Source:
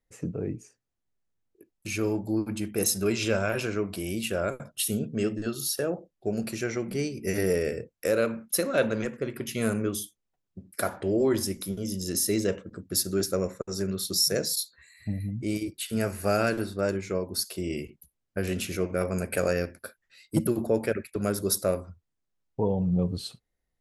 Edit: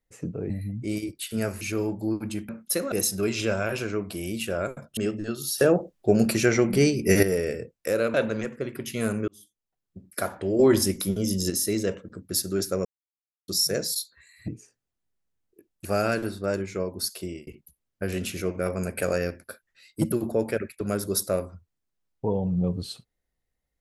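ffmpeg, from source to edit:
-filter_complex "[0:a]asplit=17[s0][s1][s2][s3][s4][s5][s6][s7][s8][s9][s10][s11][s12][s13][s14][s15][s16];[s0]atrim=end=0.502[s17];[s1]atrim=start=15.088:end=16.202[s18];[s2]atrim=start=1.868:end=2.752[s19];[s3]atrim=start=8.318:end=8.752[s20];[s4]atrim=start=2.748:end=4.802[s21];[s5]atrim=start=5.148:end=5.762[s22];[s6]atrim=start=5.758:end=7.412,asetpts=PTS-STARTPTS,volume=2.99[s23];[s7]atrim=start=7.408:end=8.322[s24];[s8]atrim=start=8.748:end=9.89,asetpts=PTS-STARTPTS,afade=t=out:st=1.138:d=0.004:c=hsin[s25];[s9]atrim=start=9.89:end=11.202,asetpts=PTS-STARTPTS,afade=t=in:d=0.77[s26];[s10]atrim=start=11.198:end=12.112,asetpts=PTS-STARTPTS,volume=2[s27];[s11]atrim=start=12.108:end=13.46,asetpts=PTS-STARTPTS,afade=t=out:st=1.348:d=0.004:c=hsin[s28];[s12]atrim=start=13.46:end=14.09,asetpts=PTS-STARTPTS,volume=0[s29];[s13]atrim=start=14.09:end=15.092,asetpts=PTS-STARTPTS,afade=t=in:d=0.004:c=hsin[s30];[s14]atrim=start=0.498:end=1.872[s31];[s15]atrim=start=16.198:end=17.82,asetpts=PTS-STARTPTS,afade=t=out:st=1.372:d=0.25[s32];[s16]atrim=start=17.82,asetpts=PTS-STARTPTS,afade=t=in:d=0.004:c=hsin[s33];[s17][s18]acrossfade=d=0.004:c1=hsin:c2=hsin[s34];[s34][s19]acrossfade=d=0.004:c1=hsin:c2=hsin[s35];[s35][s20]acrossfade=d=0.004:c1=hsin:c2=hsin[s36];[s36][s21]acrossfade=d=0.004:c1=hsin:c2=hsin[s37];[s37][s22]acrossfade=d=0.004:c1=hsin:c2=hsin[s38];[s38][s23]acrossfade=d=0.004:c1=hsin:c2=hsin[s39];[s39][s24]acrossfade=d=0.004:c1=hsin:c2=hsin[s40];[s25][s26]concat=n=2:v=0:a=1[s41];[s40][s41]acrossfade=d=0.004:c1=hsin:c2=hsin[s42];[s42][s27]acrossfade=d=0.004:c1=hsin:c2=hsin[s43];[s28][s29][s30]concat=n=3:v=0:a=1[s44];[s43][s44]acrossfade=d=0.004:c1=hsin:c2=hsin[s45];[s45][s31]acrossfade=d=0.004:c1=hsin:c2=hsin[s46];[s32][s33]concat=n=2:v=0:a=1[s47];[s46][s47]acrossfade=d=0.004:c1=hsin:c2=hsin"

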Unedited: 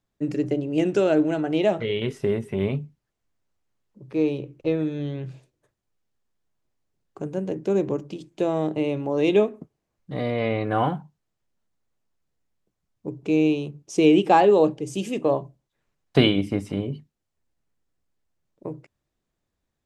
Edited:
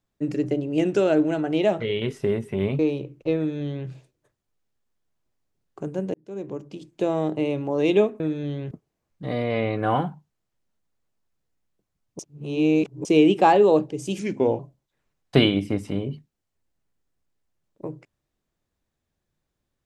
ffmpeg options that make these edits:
-filter_complex "[0:a]asplit=9[s0][s1][s2][s3][s4][s5][s6][s7][s8];[s0]atrim=end=2.792[s9];[s1]atrim=start=4.178:end=7.53,asetpts=PTS-STARTPTS,afade=t=out:st=3.348:d=0.004:c=hsin[s10];[s2]atrim=start=7.53:end=9.592,asetpts=PTS-STARTPTS,afade=t=in:d=0.88[s11];[s3]atrim=start=4.758:end=5.272[s12];[s4]atrim=start=9.588:end=13.072[s13];[s5]atrim=start=13.068:end=13.932,asetpts=PTS-STARTPTS,areverse[s14];[s6]atrim=start=13.928:end=15.074[s15];[s7]atrim=start=15.07:end=15.41,asetpts=PTS-STARTPTS,asetrate=37044,aresample=44100[s16];[s8]atrim=start=15.406[s17];[s10][s11]concat=n=2:v=0:a=1[s18];[s9][s18]acrossfade=d=0.004:c1=hsin:c2=hsin[s19];[s19][s12]acrossfade=d=0.004:c1=hsin:c2=hsin[s20];[s20][s13]acrossfade=d=0.004:c1=hsin:c2=hsin[s21];[s21][s14]acrossfade=d=0.004:c1=hsin:c2=hsin[s22];[s22][s15]acrossfade=d=0.004:c1=hsin:c2=hsin[s23];[s23][s16]acrossfade=d=0.004:c1=hsin:c2=hsin[s24];[s24][s17]acrossfade=d=0.004:c1=hsin:c2=hsin"

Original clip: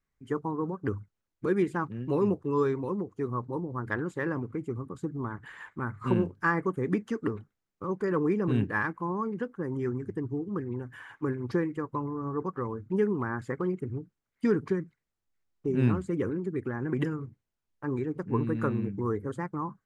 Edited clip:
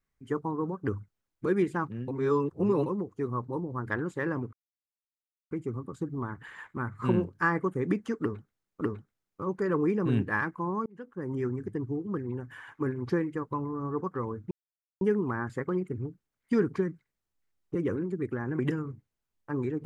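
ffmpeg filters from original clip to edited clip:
-filter_complex "[0:a]asplit=8[s0][s1][s2][s3][s4][s5][s6][s7];[s0]atrim=end=2.082[s8];[s1]atrim=start=2.078:end=2.862,asetpts=PTS-STARTPTS,areverse[s9];[s2]atrim=start=2.858:end=4.53,asetpts=PTS-STARTPTS,afade=t=out:st=1.668:d=0.004:c=hsin,apad=pad_dur=0.98[s10];[s3]atrim=start=4.53:end=7.832,asetpts=PTS-STARTPTS,afade=t=in:d=0.004:c=hsin[s11];[s4]atrim=start=7.228:end=9.28,asetpts=PTS-STARTPTS,afade=t=out:st=2.048:d=0.004:c=hsin[s12];[s5]atrim=start=9.28:end=12.93,asetpts=PTS-STARTPTS,afade=t=in:d=0.48,afade=t=out:st=3.646:d=0.004:c=hsin,apad=pad_dur=0.5[s13];[s6]atrim=start=12.93:end=15.672,asetpts=PTS-STARTPTS,afade=t=in:d=0.004:c=hsin[s14];[s7]atrim=start=16.088[s15];[s8][s9]acrossfade=d=0.004:c1=hsin:c2=hsin[s16];[s10][s11]concat=n=2:v=0:a=1[s17];[s16][s17]acrossfade=d=0.004:c1=hsin:c2=hsin[s18];[s12][s13][s14]concat=n=3:v=0:a=1[s19];[s18][s19]acrossfade=d=0.004:c1=hsin:c2=hsin[s20];[s20][s15]acrossfade=d=0.004:c1=hsin:c2=hsin"

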